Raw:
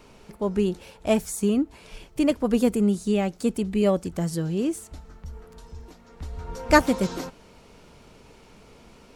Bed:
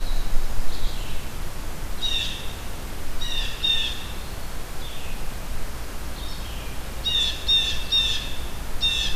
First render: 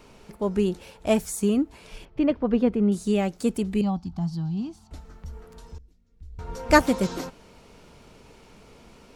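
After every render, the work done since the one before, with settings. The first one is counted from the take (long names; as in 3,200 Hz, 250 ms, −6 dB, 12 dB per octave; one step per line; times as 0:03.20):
0:02.05–0:02.92: high-frequency loss of the air 310 metres
0:03.81–0:04.91: drawn EQ curve 220 Hz 0 dB, 520 Hz −28 dB, 770 Hz +2 dB, 1,900 Hz −18 dB, 4,600 Hz −3 dB, 8,300 Hz −24 dB
0:05.78–0:06.39: guitar amp tone stack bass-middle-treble 10-0-1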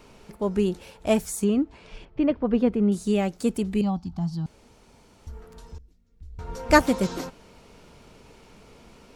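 0:01.44–0:02.55: high-frequency loss of the air 98 metres
0:04.46–0:05.27: fill with room tone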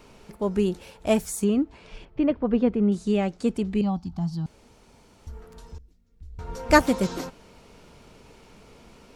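0:02.21–0:03.91: high-frequency loss of the air 66 metres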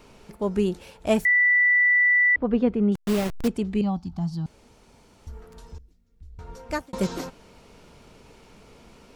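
0:01.25–0:02.36: beep over 1,970 Hz −15.5 dBFS
0:02.95–0:03.48: hold until the input has moved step −25 dBFS
0:05.75–0:06.93: fade out equal-power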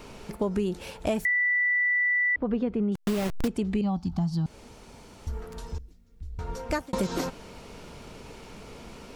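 in parallel at +0.5 dB: brickwall limiter −20 dBFS, peak gain reduction 11.5 dB
on the sum: downward compressor 6 to 1, threshold −24 dBFS, peak gain reduction 11 dB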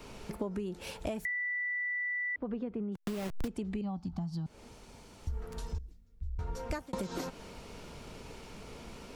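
downward compressor 6 to 1, threshold −34 dBFS, peak gain reduction 11.5 dB
multiband upward and downward expander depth 40%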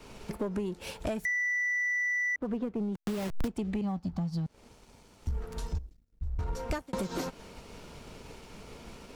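leveller curve on the samples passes 2
expander for the loud parts 1.5 to 1, over −45 dBFS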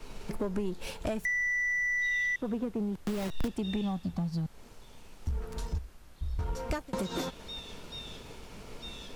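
mix in bed −23.5 dB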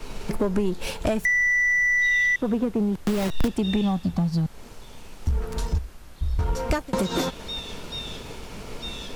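level +9 dB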